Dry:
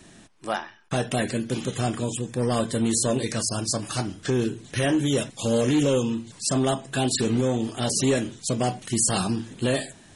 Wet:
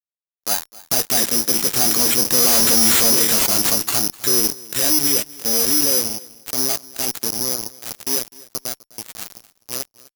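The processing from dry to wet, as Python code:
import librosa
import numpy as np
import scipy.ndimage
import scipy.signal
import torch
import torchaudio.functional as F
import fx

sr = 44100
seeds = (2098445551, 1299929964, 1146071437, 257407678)

p1 = fx.doppler_pass(x, sr, speed_mps=5, closest_m=1.3, pass_at_s=2.69)
p2 = scipy.signal.sosfilt(scipy.signal.butter(2, 230.0, 'highpass', fs=sr, output='sos'), p1)
p3 = fx.high_shelf(p2, sr, hz=5500.0, db=-11.0)
p4 = fx.notch(p3, sr, hz=580.0, q=14.0)
p5 = fx.fuzz(p4, sr, gain_db=48.0, gate_db=-51.0)
p6 = p5 + fx.echo_feedback(p5, sr, ms=253, feedback_pct=22, wet_db=-21.0, dry=0)
p7 = (np.kron(p6[::8], np.eye(8)[0]) * 8)[:len(p6)]
y = F.gain(torch.from_numpy(p7), -9.0).numpy()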